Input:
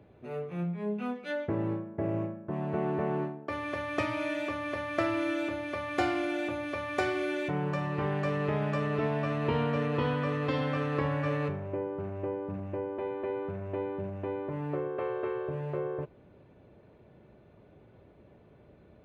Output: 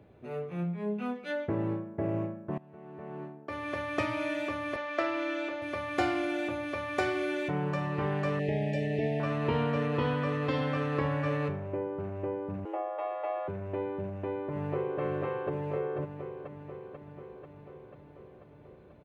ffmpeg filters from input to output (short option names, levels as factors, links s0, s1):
-filter_complex "[0:a]asettb=1/sr,asplit=3[s0][s1][s2];[s0]atrim=end=4.764[s3];[s1]atrim=start=4.76:end=5.62,asetpts=PTS-STARTPTS,afade=t=in:d=0.004:c=qsin,afade=t=out:st=0.856:d=0.004:c=qsin,acrossover=split=290 7200:gain=0.0794 1 0.0631[s4][s5][s6];[s4][s5][s6]amix=inputs=3:normalize=0[s7];[s2]atrim=start=5.616[s8];[s3][s7]acrossfade=d=0.004:c1=hsin:c2=qsin[s9];[s9][s8]acrossfade=d=0.004:c1=qsin:c2=hsin,asettb=1/sr,asplit=3[s10][s11][s12];[s10]atrim=end=8.394[s13];[s11]atrim=start=8.39:end=9.2,asetpts=PTS-STARTPTS,afade=t=in:d=0.004:c=qsin,afade=t=out:st=0.806:d=0.004:c=qsin,asuperstop=centerf=1200:order=12:qfactor=1.3[s14];[s12]atrim=start=9.196[s15];[s13][s14]acrossfade=d=0.004:c1=hsin:c2=qsin[s16];[s16][s15]acrossfade=d=0.004:c1=qsin:c2=hsin,asettb=1/sr,asplit=3[s17][s18][s19];[s17]atrim=end=12.654[s20];[s18]atrim=start=12.65:end=13.48,asetpts=PTS-STARTPTS,afade=t=in:d=0.004:c=qsin,afade=t=out:st=0.826:d=0.004:c=qsin,afreqshift=230[s21];[s19]atrim=start=13.476[s22];[s20][s21]acrossfade=d=0.004:c1=hsin:c2=qsin[s23];[s23][s22]acrossfade=d=0.004:c1=qsin:c2=hsin,asplit=2[s24][s25];[s25]afade=t=in:st=14.06:d=0.01,afade=t=out:st=15:d=0.01,aecho=0:1:490|980|1470|1960|2450|2940|3430|3920|4410|4900|5390|5880:0.794328|0.55603|0.389221|0.272455|0.190718|0.133503|0.0934519|0.0654163|0.0457914|0.032054|0.0224378|0.0157065[s26];[s24][s26]amix=inputs=2:normalize=0,asplit=2[s27][s28];[s27]atrim=end=2.58,asetpts=PTS-STARTPTS,afade=t=out:st=2.576:d=0.004:c=hsin:silence=0.0841395[s29];[s28]atrim=start=2.58,asetpts=PTS-STARTPTS,afade=t=in:d=1.14:c=qua:silence=0.0841395[s30];[s29][s30]concat=n=2:v=0:a=1"